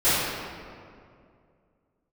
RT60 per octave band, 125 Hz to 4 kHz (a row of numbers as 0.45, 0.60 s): 2.8, 2.6, 2.5, 2.1, 1.8, 1.3 s